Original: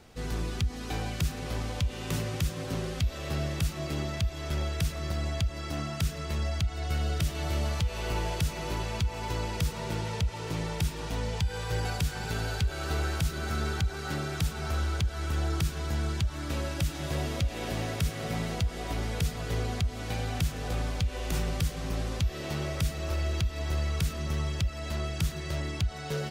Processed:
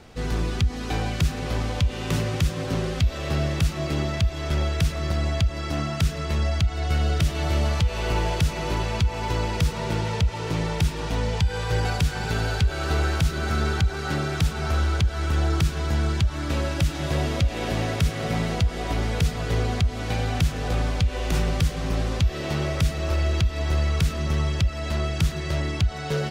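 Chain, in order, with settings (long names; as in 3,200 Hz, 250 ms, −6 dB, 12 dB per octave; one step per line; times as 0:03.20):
high-shelf EQ 8,400 Hz −9.5 dB
level +7 dB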